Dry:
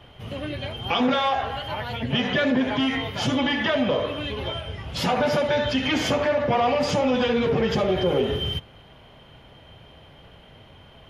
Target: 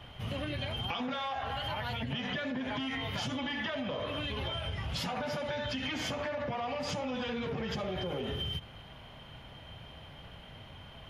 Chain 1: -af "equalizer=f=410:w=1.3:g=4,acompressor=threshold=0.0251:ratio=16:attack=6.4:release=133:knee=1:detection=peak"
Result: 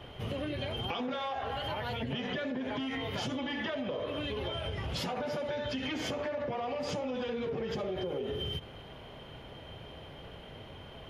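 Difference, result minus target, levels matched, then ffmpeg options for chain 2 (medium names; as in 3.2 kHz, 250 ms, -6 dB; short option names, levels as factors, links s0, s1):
500 Hz band +3.0 dB
-af "equalizer=f=410:w=1.3:g=-6,acompressor=threshold=0.0251:ratio=16:attack=6.4:release=133:knee=1:detection=peak"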